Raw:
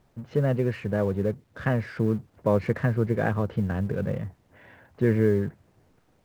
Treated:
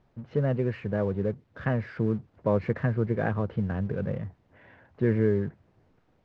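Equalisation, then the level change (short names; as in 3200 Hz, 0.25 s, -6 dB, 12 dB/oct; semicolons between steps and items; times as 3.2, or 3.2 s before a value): air absorption 140 m; -2.0 dB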